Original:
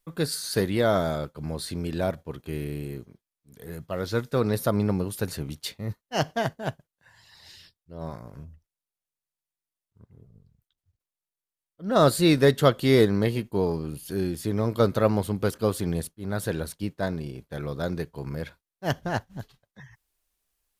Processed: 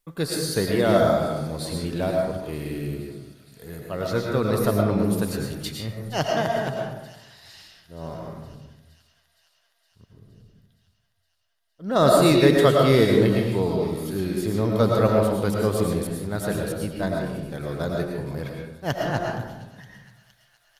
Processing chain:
on a send: delay with a high-pass on its return 466 ms, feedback 73%, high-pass 2,500 Hz, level −17 dB
on the sum: comb and all-pass reverb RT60 1 s, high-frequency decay 0.45×, pre-delay 70 ms, DRR −0.5 dB

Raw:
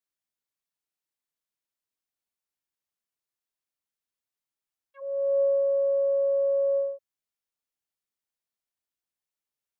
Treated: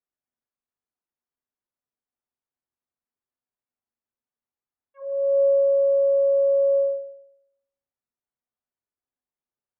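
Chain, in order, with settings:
low-pass filter 1,400 Hz 12 dB per octave
on a send: convolution reverb RT60 0.80 s, pre-delay 4 ms, DRR 4 dB

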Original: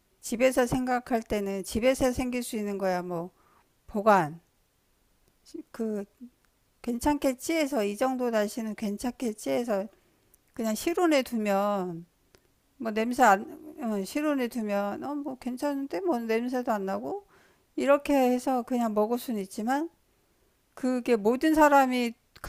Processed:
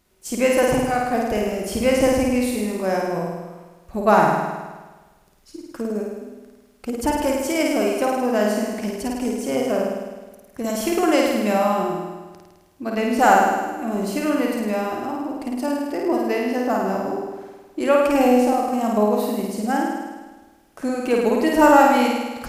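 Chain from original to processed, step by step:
on a send: flutter between parallel walls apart 9 metres, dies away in 1.3 s
on the sum: level +3.5 dB

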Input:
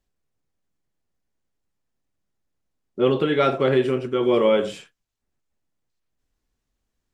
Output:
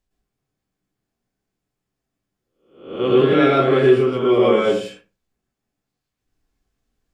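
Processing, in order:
peak hold with a rise ahead of every peak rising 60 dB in 0.53 s
convolution reverb RT60 0.35 s, pre-delay 107 ms, DRR −4.5 dB
level −3.5 dB

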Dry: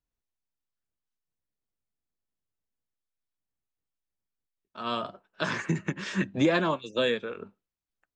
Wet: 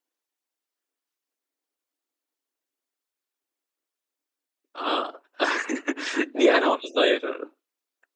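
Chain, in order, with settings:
random phases in short frames
linear-phase brick-wall high-pass 250 Hz
level +6.5 dB

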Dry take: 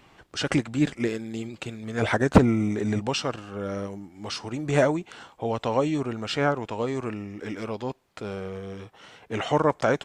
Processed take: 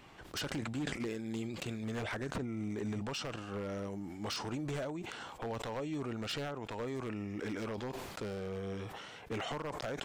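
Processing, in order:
downward compressor 8 to 1, threshold −33 dBFS, peak gain reduction 23 dB
wave folding −29.5 dBFS
level that may fall only so fast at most 35 dB per second
level −1.5 dB

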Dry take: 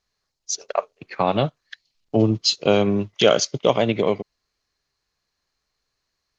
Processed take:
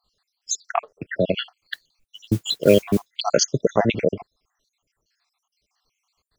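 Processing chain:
time-frequency cells dropped at random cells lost 69%
in parallel at −0.5 dB: downward compressor, threshold −34 dBFS, peak gain reduction 20 dB
0:01.61–0:03.16: on the sum: noise that follows the level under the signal 22 dB
level +3 dB

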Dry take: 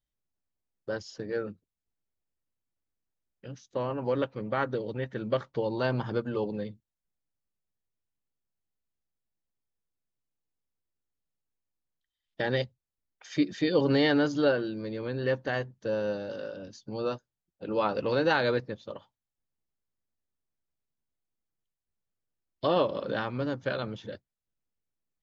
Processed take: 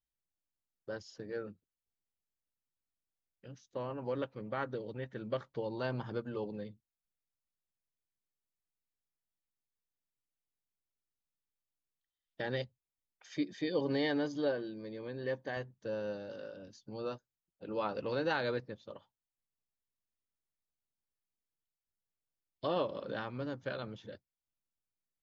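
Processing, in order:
0:13.35–0:15.57: notch comb filter 1,400 Hz
level −8 dB

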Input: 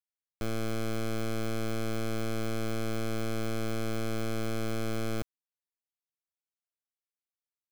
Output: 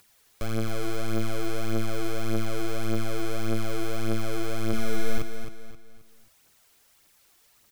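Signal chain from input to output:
upward compression, threshold −39 dBFS
0:04.67–0:05.18: flutter between parallel walls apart 10 metres, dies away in 0.87 s
phase shifter 1.7 Hz, delay 3 ms, feedback 53%
on a send: repeating echo 265 ms, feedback 37%, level −8.5 dB
on the sum: level +1 dB

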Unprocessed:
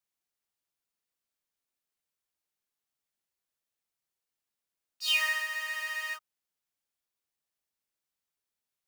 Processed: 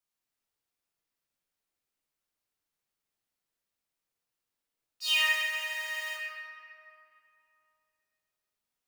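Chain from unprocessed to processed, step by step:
0:05.36–0:06.17: low-shelf EQ 420 Hz −10.5 dB
convolution reverb RT60 2.9 s, pre-delay 6 ms, DRR −2.5 dB
level −2 dB

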